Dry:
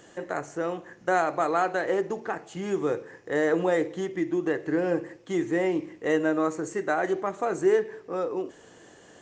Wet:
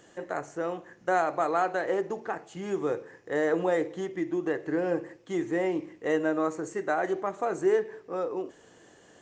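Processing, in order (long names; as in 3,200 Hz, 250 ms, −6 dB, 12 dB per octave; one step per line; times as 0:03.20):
dynamic equaliser 750 Hz, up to +3 dB, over −36 dBFS, Q 0.73
level −4 dB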